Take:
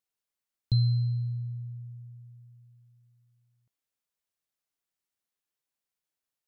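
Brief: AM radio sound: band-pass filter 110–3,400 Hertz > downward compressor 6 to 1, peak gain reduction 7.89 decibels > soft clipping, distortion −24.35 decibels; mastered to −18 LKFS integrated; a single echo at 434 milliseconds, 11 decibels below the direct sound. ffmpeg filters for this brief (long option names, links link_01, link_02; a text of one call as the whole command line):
ffmpeg -i in.wav -af "highpass=110,lowpass=3400,aecho=1:1:434:0.282,acompressor=threshold=-31dB:ratio=6,asoftclip=threshold=-26.5dB,volume=20dB" out.wav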